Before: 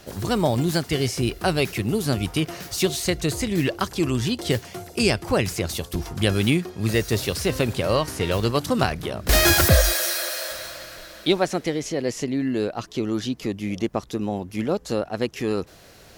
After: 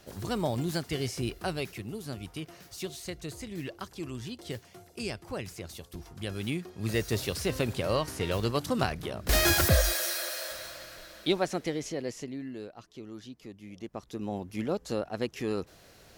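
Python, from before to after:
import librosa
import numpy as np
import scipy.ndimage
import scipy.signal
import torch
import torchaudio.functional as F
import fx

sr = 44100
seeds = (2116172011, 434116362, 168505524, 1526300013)

y = fx.gain(x, sr, db=fx.line((1.31, -9.0), (1.94, -15.5), (6.26, -15.5), (7.01, -7.0), (11.84, -7.0), (12.74, -18.5), (13.71, -18.5), (14.35, -7.0)))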